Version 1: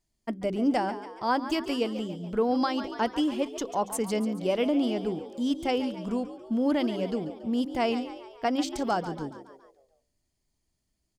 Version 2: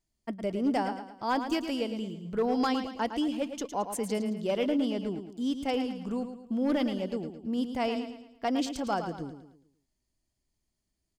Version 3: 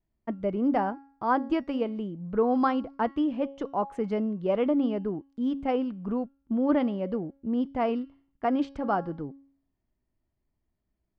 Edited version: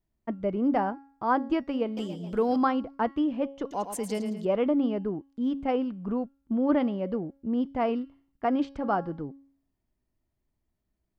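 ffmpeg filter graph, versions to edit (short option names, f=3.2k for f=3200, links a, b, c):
-filter_complex "[2:a]asplit=3[a][b][c];[a]atrim=end=1.972[d];[0:a]atrim=start=1.968:end=2.562[e];[b]atrim=start=2.558:end=3.712[f];[1:a]atrim=start=3.708:end=4.452[g];[c]atrim=start=4.448[h];[d][e]acrossfade=d=0.004:c1=hsin:c2=hsin[i];[i][f]acrossfade=d=0.004:c1=hsin:c2=hsin[j];[j][g]acrossfade=d=0.004:c1=hsin:c2=hsin[k];[k][h]acrossfade=d=0.004:c1=hsin:c2=hsin"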